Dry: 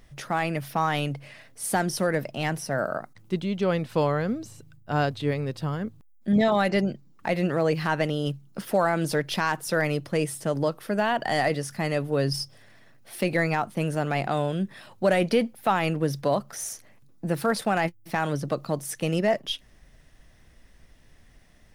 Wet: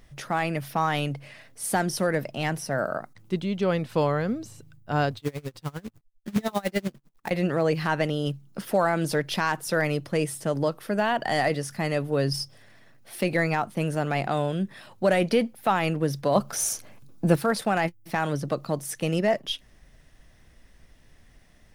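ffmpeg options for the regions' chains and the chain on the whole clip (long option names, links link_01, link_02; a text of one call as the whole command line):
ffmpeg -i in.wav -filter_complex "[0:a]asettb=1/sr,asplit=3[link_01][link_02][link_03];[link_01]atrim=end=5.174[link_04];[link_02]atrim=start=5.17:end=7.31,asetpts=PTS-STARTPTS,afade=type=in:duration=0.004:curve=qsin,afade=type=out:start_time=2.136:duration=0.004:curve=qsin,bandreject=frequency=650:width=12,acrusher=bits=3:mode=log:mix=0:aa=0.000001,aeval=exprs='val(0)*pow(10,-28*(0.5-0.5*cos(2*PI*10*n/s))/20)':channel_layout=same[link_05];[link_03]atrim=start=7.306[link_06];[link_04][link_05]acrossfade=duration=0.004:curve1=hsin:curve2=qsin[link_07];[link_07][link_06]acrossfade=duration=0.004:curve1=qsin:curve2=hsin,asettb=1/sr,asplit=3[link_08][link_09][link_10];[link_08]atrim=end=16.354[link_11];[link_09]atrim=start=16.35:end=17.36,asetpts=PTS-STARTPTS,afade=type=in:duration=0.004:curve=qsin,afade=type=out:start_time=1.006:duration=0.004:curve=qsin,acontrast=82,bandreject=frequency=1900:width=6.5[link_12];[link_10]atrim=start=17.356[link_13];[link_11][link_12]acrossfade=duration=0.004:curve1=hsin:curve2=qsin[link_14];[link_14][link_13]acrossfade=duration=0.004:curve1=qsin:curve2=hsin" out.wav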